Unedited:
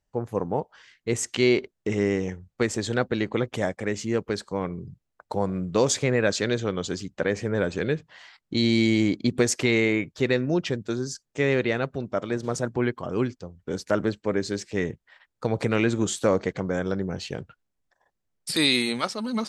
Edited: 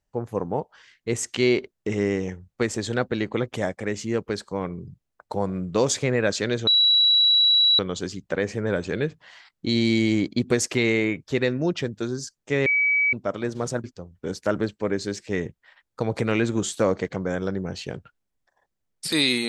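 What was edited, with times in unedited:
6.67 s: add tone 3.91 kHz -14.5 dBFS 1.12 s
11.54–12.01 s: bleep 2.28 kHz -17.5 dBFS
12.72–13.28 s: delete

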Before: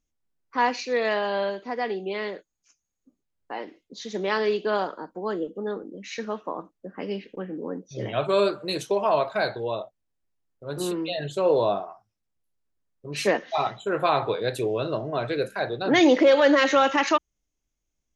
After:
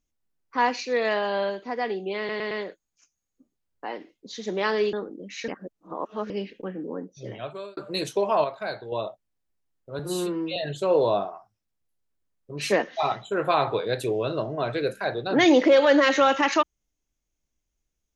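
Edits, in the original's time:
2.18 s: stutter 0.11 s, 4 plays
4.60–5.67 s: delete
6.22–7.04 s: reverse
7.58–8.51 s: fade out
9.18–9.66 s: gain -6.5 dB
10.73–11.11 s: stretch 1.5×

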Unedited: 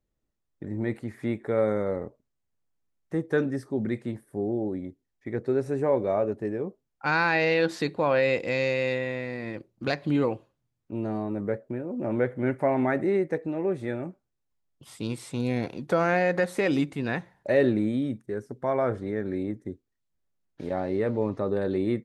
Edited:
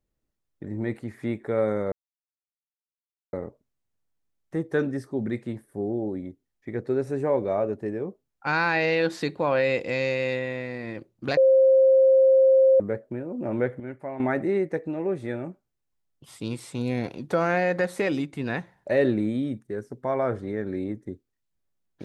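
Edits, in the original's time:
1.92 s: insert silence 1.41 s
9.96–11.39 s: bleep 530 Hz -13.5 dBFS
12.39–12.79 s: gain -10.5 dB
16.62–16.92 s: fade out, to -7 dB

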